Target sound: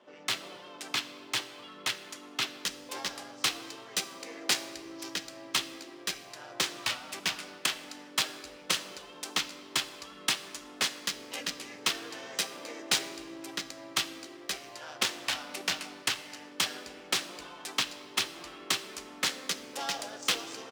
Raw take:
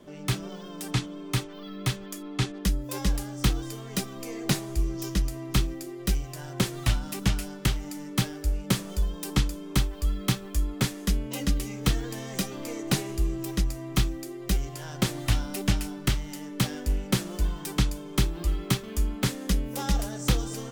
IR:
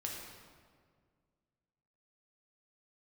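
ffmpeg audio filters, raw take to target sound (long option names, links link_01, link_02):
-filter_complex "[0:a]asplit=2[link_01][link_02];[link_02]asetrate=37084,aresample=44100,atempo=1.18921,volume=-4dB[link_03];[link_01][link_03]amix=inputs=2:normalize=0,highshelf=frequency=2500:gain=11.5,adynamicsmooth=sensitivity=1.5:basefreq=2300,highpass=540,asplit=2[link_04][link_05];[1:a]atrim=start_sample=2205,highshelf=frequency=5500:gain=5[link_06];[link_05][link_06]afir=irnorm=-1:irlink=0,volume=-9.5dB[link_07];[link_04][link_07]amix=inputs=2:normalize=0,volume=-5dB"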